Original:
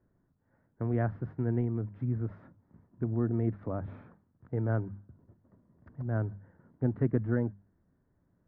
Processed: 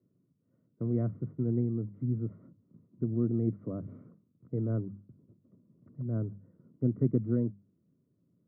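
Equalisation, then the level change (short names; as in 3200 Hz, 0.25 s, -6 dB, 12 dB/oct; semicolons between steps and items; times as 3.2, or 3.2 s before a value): running mean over 53 samples; HPF 120 Hz 24 dB/oct; +3.0 dB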